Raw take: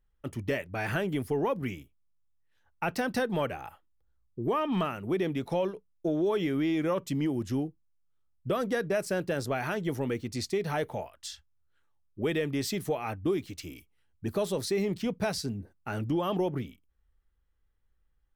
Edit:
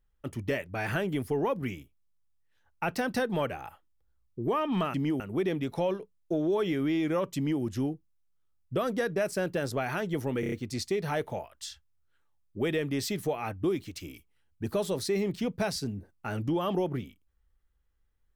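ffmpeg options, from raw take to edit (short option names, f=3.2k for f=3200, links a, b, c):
-filter_complex "[0:a]asplit=7[a][b][c][d][e][f][g];[a]atrim=end=4.942[h];[b]atrim=start=7.098:end=7.362[i];[c]atrim=start=4.938:end=10.172[j];[d]atrim=start=10.138:end=10.172[k];[e]atrim=start=10.138:end=10.172[l];[f]atrim=start=10.138:end=10.172[m];[g]atrim=start=10.138[n];[h][i]acrossfade=d=0.004:c1=hsin:c2=hsin[o];[o][j]acrossfade=d=0.004:c1=hsin:c2=hsin[p];[p][k]acrossfade=d=0.004:c1=hsin:c2=hsin[q];[q][l]acrossfade=d=0.004:c1=hsin:c2=hsin[r];[r][m]acrossfade=d=0.004:c1=hsin:c2=hsin[s];[s][n]acrossfade=d=0.004:c1=hsin:c2=hsin"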